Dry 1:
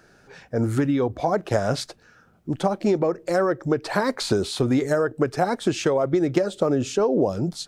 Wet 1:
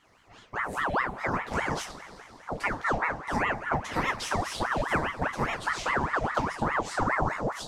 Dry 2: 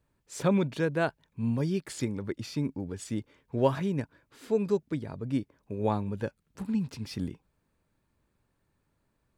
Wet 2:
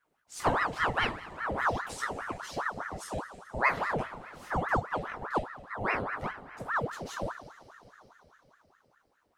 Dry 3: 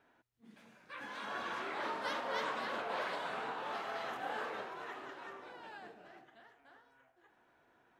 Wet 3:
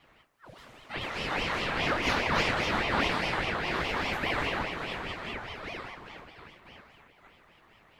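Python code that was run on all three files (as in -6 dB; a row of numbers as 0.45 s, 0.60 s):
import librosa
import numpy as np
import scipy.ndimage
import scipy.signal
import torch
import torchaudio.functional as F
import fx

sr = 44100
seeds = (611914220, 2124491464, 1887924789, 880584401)

y = fx.rev_double_slope(x, sr, seeds[0], early_s=0.26, late_s=4.3, knee_db=-22, drr_db=-1.0)
y = fx.ring_lfo(y, sr, carrier_hz=950.0, swing_pct=70, hz=4.9)
y = librosa.util.normalize(y) * 10.0 ** (-12 / 20.0)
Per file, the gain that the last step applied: -7.5 dB, -3.0 dB, +9.5 dB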